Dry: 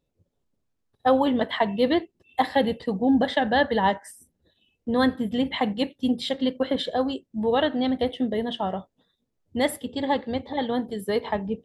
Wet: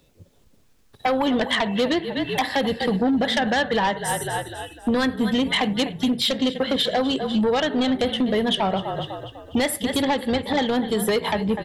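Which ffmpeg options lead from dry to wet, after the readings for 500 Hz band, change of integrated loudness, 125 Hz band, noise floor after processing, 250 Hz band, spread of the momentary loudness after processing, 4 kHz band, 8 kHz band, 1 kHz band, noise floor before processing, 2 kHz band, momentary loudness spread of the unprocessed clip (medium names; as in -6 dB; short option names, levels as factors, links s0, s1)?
+1.5 dB, +2.5 dB, +6.0 dB, -57 dBFS, +2.5 dB, 5 LU, +7.5 dB, no reading, +1.0 dB, -77 dBFS, +5.0 dB, 7 LU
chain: -filter_complex "[0:a]acrossover=split=100|1300[s0][s1][s2];[s2]acontrast=31[s3];[s0][s1][s3]amix=inputs=3:normalize=0,asplit=5[s4][s5][s6][s7][s8];[s5]adelay=249,afreqshift=-36,volume=0.158[s9];[s6]adelay=498,afreqshift=-72,volume=0.0631[s10];[s7]adelay=747,afreqshift=-108,volume=0.0254[s11];[s8]adelay=996,afreqshift=-144,volume=0.0101[s12];[s4][s9][s10][s11][s12]amix=inputs=5:normalize=0,acompressor=threshold=0.02:ratio=6,aeval=exprs='0.0841*sin(PI/2*2.24*val(0)/0.0841)':c=same,volume=2"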